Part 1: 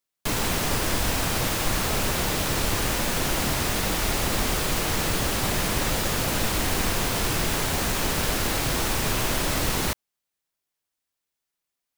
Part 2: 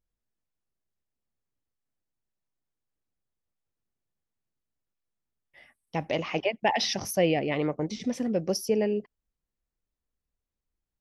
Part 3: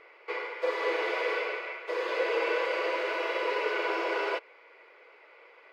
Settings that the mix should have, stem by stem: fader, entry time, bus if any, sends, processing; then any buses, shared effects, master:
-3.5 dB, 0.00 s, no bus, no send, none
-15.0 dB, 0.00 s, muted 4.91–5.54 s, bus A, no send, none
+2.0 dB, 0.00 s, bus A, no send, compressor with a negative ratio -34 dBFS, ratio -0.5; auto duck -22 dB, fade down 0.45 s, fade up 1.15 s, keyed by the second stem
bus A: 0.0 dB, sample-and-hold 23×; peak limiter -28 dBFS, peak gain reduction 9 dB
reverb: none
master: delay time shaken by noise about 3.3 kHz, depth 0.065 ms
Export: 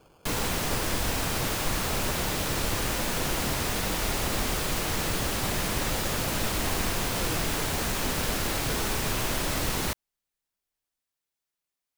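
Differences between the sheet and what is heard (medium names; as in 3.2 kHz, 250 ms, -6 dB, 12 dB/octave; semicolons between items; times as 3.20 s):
stem 3 +2.0 dB -> -8.0 dB; master: missing delay time shaken by noise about 3.3 kHz, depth 0.065 ms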